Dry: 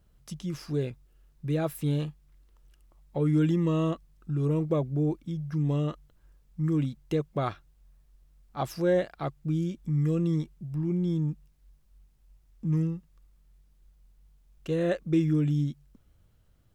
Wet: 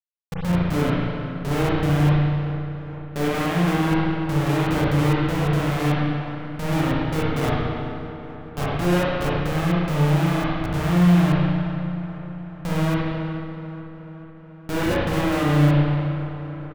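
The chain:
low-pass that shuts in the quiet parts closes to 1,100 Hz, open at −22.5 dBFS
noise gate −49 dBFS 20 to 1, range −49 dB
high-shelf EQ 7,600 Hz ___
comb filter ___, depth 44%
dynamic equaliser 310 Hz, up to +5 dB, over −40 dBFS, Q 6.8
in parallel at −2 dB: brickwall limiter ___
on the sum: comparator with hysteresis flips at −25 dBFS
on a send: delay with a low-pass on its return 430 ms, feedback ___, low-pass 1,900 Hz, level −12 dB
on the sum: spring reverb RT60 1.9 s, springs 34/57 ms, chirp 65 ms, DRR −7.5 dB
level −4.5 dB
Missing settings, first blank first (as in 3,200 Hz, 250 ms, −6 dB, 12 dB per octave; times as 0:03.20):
+5 dB, 6.8 ms, −18 dBFS, 61%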